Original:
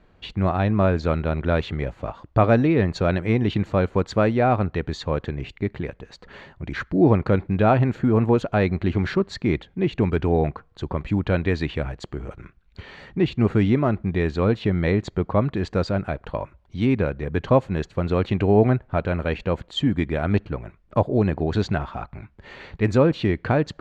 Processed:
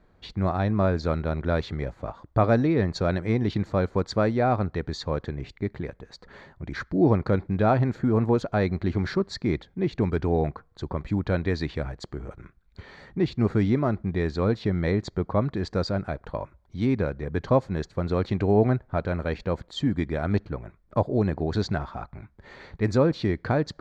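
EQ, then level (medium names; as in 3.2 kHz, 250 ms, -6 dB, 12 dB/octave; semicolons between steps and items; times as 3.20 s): dynamic bell 5 kHz, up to +7 dB, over -53 dBFS, Q 2; peaking EQ 2.8 kHz -10 dB 0.4 oct; -3.5 dB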